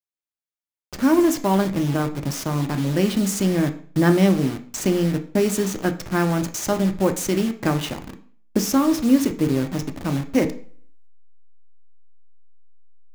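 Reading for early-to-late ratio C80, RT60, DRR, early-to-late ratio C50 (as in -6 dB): 18.0 dB, 0.45 s, 6.0 dB, 13.0 dB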